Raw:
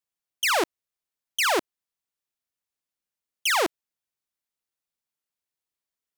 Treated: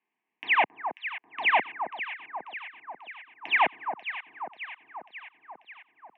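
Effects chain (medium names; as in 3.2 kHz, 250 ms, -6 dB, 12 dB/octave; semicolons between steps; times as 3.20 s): waveshaping leveller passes 3; sine folder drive 14 dB, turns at -16.5 dBFS; static phaser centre 1 kHz, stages 8; echo whose repeats swap between lows and highs 270 ms, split 1.4 kHz, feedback 77%, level -8 dB; mistuned SSB -110 Hz 250–2700 Hz; trim +4 dB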